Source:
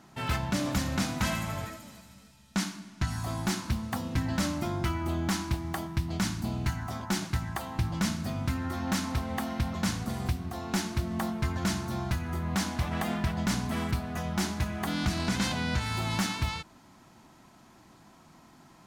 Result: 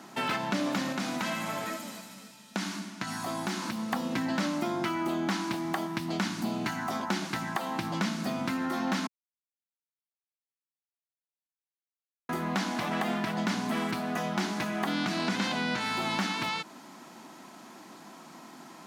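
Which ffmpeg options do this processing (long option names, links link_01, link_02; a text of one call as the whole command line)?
ffmpeg -i in.wav -filter_complex "[0:a]asettb=1/sr,asplit=3[link_01][link_02][link_03];[link_01]atrim=end=0.924[link_04];[link_02]atrim=start=0.92:end=3.93,asetpts=PTS-STARTPTS,afade=type=in:duration=0.004:curve=qsin,afade=type=out:start_time=3.006:duration=0.004:curve=qsin,acompressor=threshold=-36dB:ratio=2:attack=3.2:release=140:knee=1:detection=peak[link_05];[link_03]atrim=start=3.926[link_06];[link_04][link_05]acrossfade=duration=0.004:curve1=hsin:curve2=qsin[link_07];[link_07][link_06]acrossfade=duration=0.004:curve1=qsin:curve2=hsin,asplit=3[link_08][link_09][link_10];[link_08]atrim=end=9.07,asetpts=PTS-STARTPTS,afade=type=out:start_time=9.066:duration=0.004:curve=hsin[link_11];[link_09]atrim=start=9.07:end=12.29,asetpts=PTS-STARTPTS,volume=0[link_12];[link_10]atrim=start=12.29,asetpts=PTS-STARTPTS,afade=type=in:duration=0.004:curve=hsin[link_13];[link_11][link_12][link_13]concat=n=3:v=0:a=1,acrossover=split=4900[link_14][link_15];[link_15]acompressor=threshold=-50dB:ratio=4:attack=1:release=60[link_16];[link_14][link_16]amix=inputs=2:normalize=0,highpass=frequency=200:width=0.5412,highpass=frequency=200:width=1.3066,acompressor=threshold=-38dB:ratio=2.5,volume=8.5dB" out.wav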